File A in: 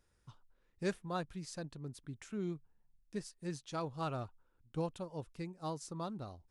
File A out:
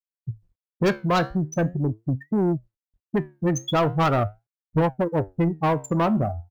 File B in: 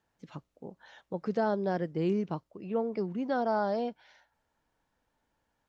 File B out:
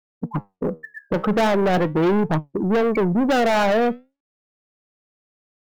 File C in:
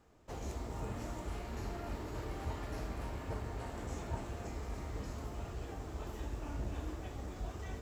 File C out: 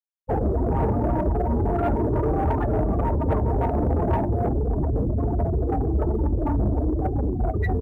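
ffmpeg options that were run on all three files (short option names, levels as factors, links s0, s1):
-filter_complex "[0:a]afftfilt=real='re*gte(hypot(re,im),0.0158)':imag='im*gte(hypot(re,im),0.0158)':win_size=1024:overlap=0.75,highpass=45,apsyclip=13.3,lowshelf=f=330:g=-3,asplit=2[s0][s1];[s1]acompressor=threshold=0.0794:ratio=16,volume=1.26[s2];[s0][s2]amix=inputs=2:normalize=0,aemphasis=mode=production:type=75fm,asoftclip=type=hard:threshold=0.631,acontrast=88,flanger=delay=6.1:depth=9.5:regen=73:speed=0.42:shape=triangular,asoftclip=type=tanh:threshold=0.282,aresample=16000,aresample=44100,volume=0.631" -ar 44100 -c:a adpcm_ima_wav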